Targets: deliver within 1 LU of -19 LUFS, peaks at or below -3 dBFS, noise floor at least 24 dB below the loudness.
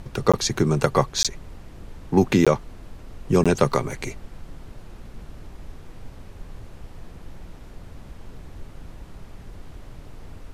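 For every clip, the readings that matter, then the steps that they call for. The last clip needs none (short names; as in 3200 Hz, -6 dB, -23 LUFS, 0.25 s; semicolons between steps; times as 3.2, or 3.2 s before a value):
dropouts 4; longest dropout 16 ms; noise floor -43 dBFS; noise floor target -46 dBFS; loudness -22.0 LUFS; peak -2.5 dBFS; loudness target -19.0 LUFS
-> interpolate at 0.32/1.23/2.45/3.44, 16 ms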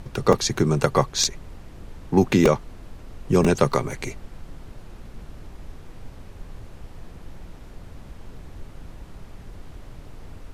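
dropouts 0; noise floor -43 dBFS; noise floor target -46 dBFS
-> noise print and reduce 6 dB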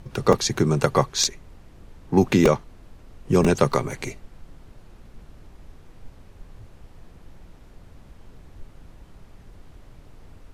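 noise floor -49 dBFS; loudness -21.5 LUFS; peak -2.5 dBFS; loudness target -19.0 LUFS
-> gain +2.5 dB; limiter -3 dBFS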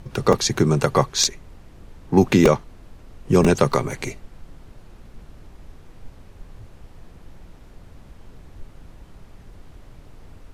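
loudness -19.5 LUFS; peak -3.0 dBFS; noise floor -46 dBFS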